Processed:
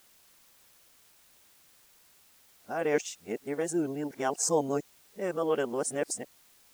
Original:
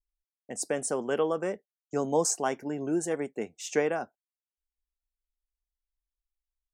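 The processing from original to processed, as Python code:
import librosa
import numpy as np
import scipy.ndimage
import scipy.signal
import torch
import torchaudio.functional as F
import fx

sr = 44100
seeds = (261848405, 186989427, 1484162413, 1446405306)

y = x[::-1].copy()
y = fx.quant_dither(y, sr, seeds[0], bits=10, dither='triangular')
y = F.gain(torch.from_numpy(y), -1.0).numpy()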